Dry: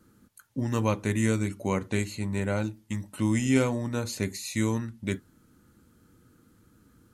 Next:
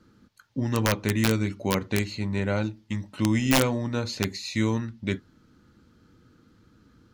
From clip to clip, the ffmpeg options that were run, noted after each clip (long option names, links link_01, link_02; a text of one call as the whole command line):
ffmpeg -i in.wav -af "highshelf=frequency=6900:width_type=q:width=1.5:gain=-13.5,aeval=exprs='(mod(5.62*val(0)+1,2)-1)/5.62':channel_layout=same,volume=2dB" out.wav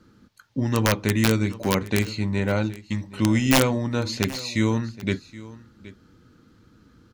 ffmpeg -i in.wav -af "aecho=1:1:773:0.119,volume=3dB" out.wav